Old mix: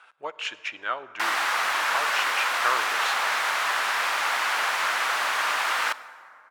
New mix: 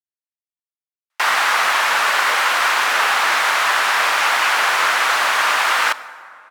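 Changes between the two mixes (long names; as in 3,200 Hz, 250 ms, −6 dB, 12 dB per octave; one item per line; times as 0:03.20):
speech: entry +2.05 s
background +8.5 dB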